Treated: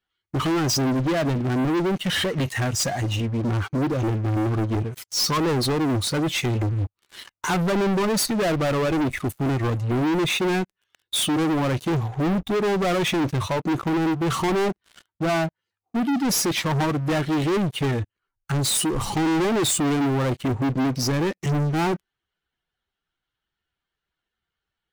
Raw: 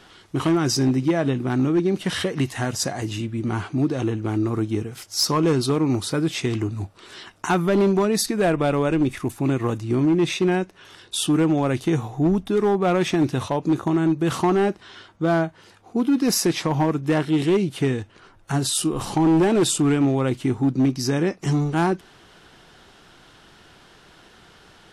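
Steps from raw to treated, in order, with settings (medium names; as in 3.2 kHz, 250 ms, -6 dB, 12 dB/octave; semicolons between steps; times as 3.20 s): expander on every frequency bin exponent 1.5; waveshaping leveller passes 5; trim -6 dB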